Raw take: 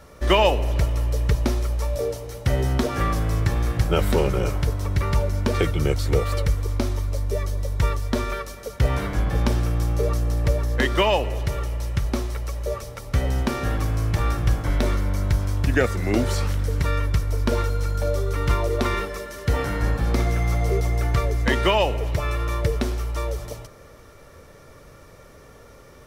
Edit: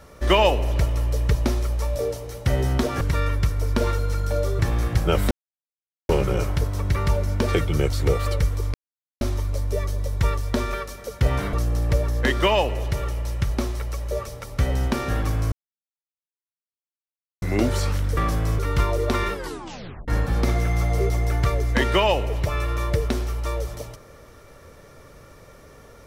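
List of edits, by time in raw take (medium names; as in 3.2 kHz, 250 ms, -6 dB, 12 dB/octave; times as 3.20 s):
3.01–3.43 s: swap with 16.72–18.30 s
4.15 s: insert silence 0.78 s
6.80 s: insert silence 0.47 s
9.12–10.08 s: delete
14.07–15.97 s: mute
19.05 s: tape stop 0.74 s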